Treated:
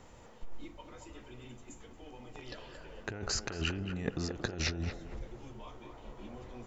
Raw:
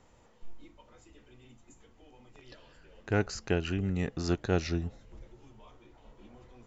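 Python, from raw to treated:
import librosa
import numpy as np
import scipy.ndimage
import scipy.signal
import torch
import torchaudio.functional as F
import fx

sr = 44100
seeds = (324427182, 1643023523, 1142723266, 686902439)

p1 = fx.over_compress(x, sr, threshold_db=-37.0, ratio=-1.0)
p2 = p1 + fx.echo_banded(p1, sr, ms=227, feedback_pct=43, hz=760.0, wet_db=-4.5, dry=0)
y = p2 * 10.0 ** (1.0 / 20.0)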